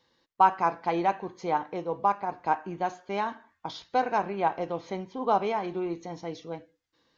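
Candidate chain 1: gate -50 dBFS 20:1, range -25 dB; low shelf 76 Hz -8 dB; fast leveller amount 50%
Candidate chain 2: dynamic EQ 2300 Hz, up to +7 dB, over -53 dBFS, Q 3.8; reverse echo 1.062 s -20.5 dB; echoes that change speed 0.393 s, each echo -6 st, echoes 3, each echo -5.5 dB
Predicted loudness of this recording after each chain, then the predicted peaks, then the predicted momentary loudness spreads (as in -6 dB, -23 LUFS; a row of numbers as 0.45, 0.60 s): -25.0, -28.0 LUFS; -8.0, -8.0 dBFS; 7, 8 LU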